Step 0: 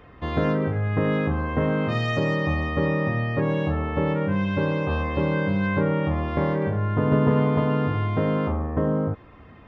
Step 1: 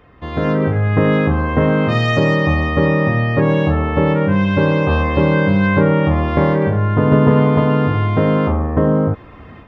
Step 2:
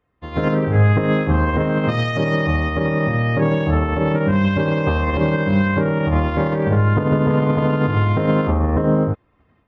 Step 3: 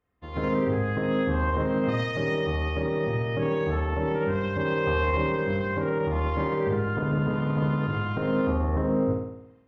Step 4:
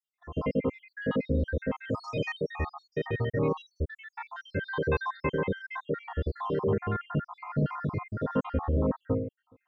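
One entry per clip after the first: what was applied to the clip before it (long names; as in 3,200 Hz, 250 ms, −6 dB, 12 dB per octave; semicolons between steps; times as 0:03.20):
automatic gain control gain up to 11.5 dB
brickwall limiter −13.5 dBFS, peak gain reduction 11.5 dB; expander for the loud parts 2.5 to 1, over −38 dBFS; level +7.5 dB
brickwall limiter −11.5 dBFS, peak gain reduction 5 dB; flutter between parallel walls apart 9.2 metres, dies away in 0.82 s; level −8.5 dB
time-frequency cells dropped at random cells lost 74%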